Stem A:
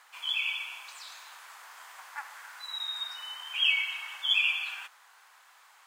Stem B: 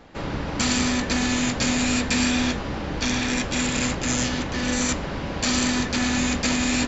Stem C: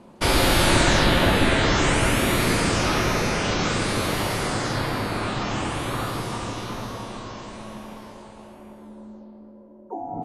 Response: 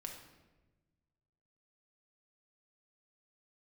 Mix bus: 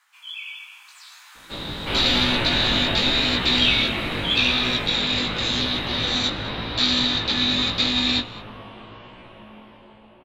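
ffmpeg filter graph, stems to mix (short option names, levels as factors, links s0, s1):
-filter_complex "[0:a]highpass=1100,volume=0.794[s0];[1:a]lowpass=f=3800:t=q:w=14,adelay=1350,volume=0.299,asplit=2[s1][s2];[s2]volume=0.0944[s3];[2:a]highshelf=f=4300:t=q:w=3:g=-13.5,adelay=1650,volume=0.224[s4];[s3]aecho=0:1:207:1[s5];[s0][s1][s4][s5]amix=inputs=4:normalize=0,dynaudnorm=f=280:g=7:m=2.82,flanger=delay=16:depth=3.8:speed=0.87"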